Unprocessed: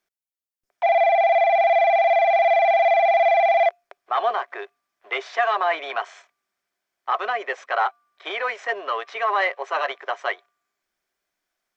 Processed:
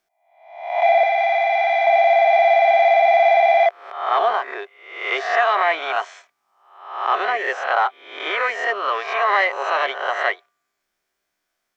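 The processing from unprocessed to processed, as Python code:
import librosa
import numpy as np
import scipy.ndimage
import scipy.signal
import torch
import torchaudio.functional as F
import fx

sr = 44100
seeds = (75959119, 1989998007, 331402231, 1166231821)

y = fx.spec_swells(x, sr, rise_s=0.72)
y = fx.highpass(y, sr, hz=760.0, slope=24, at=(1.03, 1.87))
y = F.gain(torch.from_numpy(y), 1.5).numpy()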